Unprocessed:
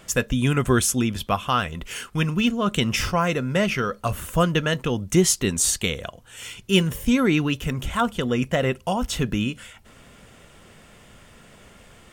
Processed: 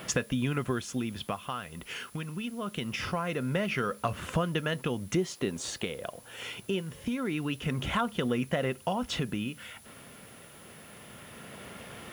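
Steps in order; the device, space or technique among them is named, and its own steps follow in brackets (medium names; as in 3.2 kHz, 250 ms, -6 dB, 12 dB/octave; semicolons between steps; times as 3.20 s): medium wave at night (band-pass 110–4100 Hz; compression 6:1, threshold -34 dBFS, peak gain reduction 20 dB; tremolo 0.24 Hz, depth 62%; whistle 10 kHz -63 dBFS; white noise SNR 25 dB); 5.15–6.81 s: peaking EQ 520 Hz +7 dB 2 oct; trim +7 dB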